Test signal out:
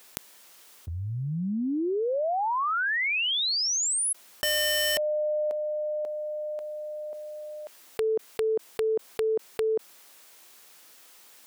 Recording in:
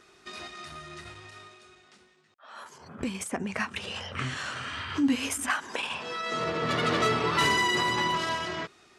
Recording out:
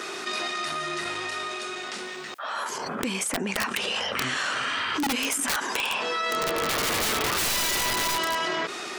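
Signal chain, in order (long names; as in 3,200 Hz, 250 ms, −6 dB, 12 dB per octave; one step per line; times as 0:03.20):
high-pass filter 280 Hz 12 dB per octave
wrap-around overflow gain 22 dB
envelope flattener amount 70%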